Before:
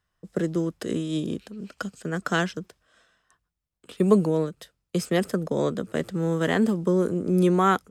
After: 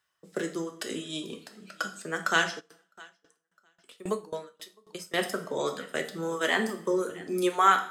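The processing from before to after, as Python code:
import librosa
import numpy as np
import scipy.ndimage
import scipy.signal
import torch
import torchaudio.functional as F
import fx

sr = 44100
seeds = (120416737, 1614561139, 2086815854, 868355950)

y = fx.highpass(x, sr, hz=1100.0, slope=6)
y = fx.echo_feedback(y, sr, ms=658, feedback_pct=30, wet_db=-18)
y = fx.dereverb_blind(y, sr, rt60_s=1.7)
y = fx.rev_double_slope(y, sr, seeds[0], early_s=0.49, late_s=2.1, knee_db=-26, drr_db=4.0)
y = fx.tremolo_decay(y, sr, direction='decaying', hz=3.7, depth_db=22, at=(2.59, 5.17), fade=0.02)
y = F.gain(torch.from_numpy(y), 3.5).numpy()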